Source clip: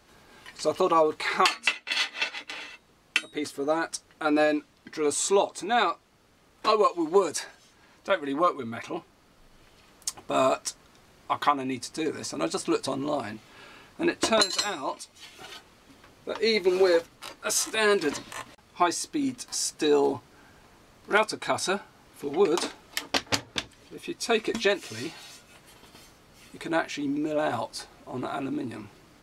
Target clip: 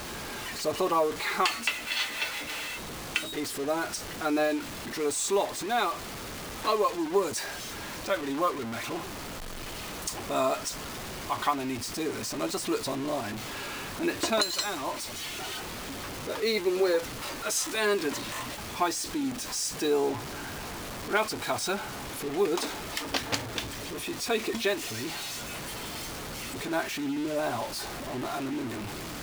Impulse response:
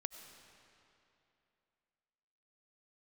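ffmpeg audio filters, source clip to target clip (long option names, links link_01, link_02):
-af "aeval=exprs='val(0)+0.5*0.0335*sgn(val(0))':channel_layout=same,acrusher=bits=5:mix=0:aa=0.5,volume=-5dB"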